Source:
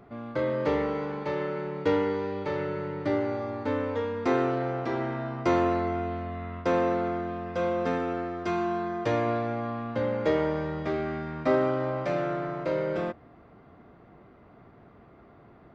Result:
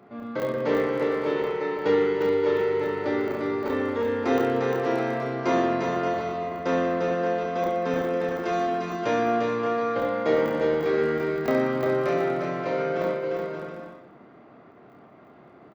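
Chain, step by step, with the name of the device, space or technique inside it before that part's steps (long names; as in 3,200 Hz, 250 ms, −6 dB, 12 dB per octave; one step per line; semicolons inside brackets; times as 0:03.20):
call with lost packets (high-pass filter 170 Hz 12 dB per octave; downsampling to 16,000 Hz; dropped packets of 20 ms random)
0:08.53–0:09.03: high-shelf EQ 5,900 Hz +9 dB
bouncing-ball delay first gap 350 ms, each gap 0.65×, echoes 5
reverse bouncing-ball delay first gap 30 ms, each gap 1.3×, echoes 5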